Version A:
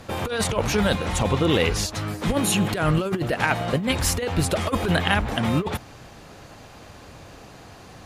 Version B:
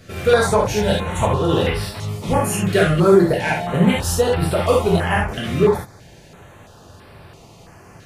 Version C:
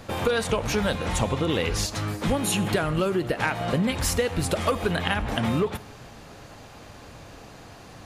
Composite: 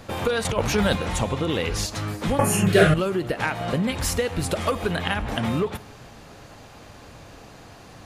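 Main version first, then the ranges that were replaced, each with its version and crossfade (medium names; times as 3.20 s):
C
0.45–1.05 s: from A
2.39–2.94 s: from B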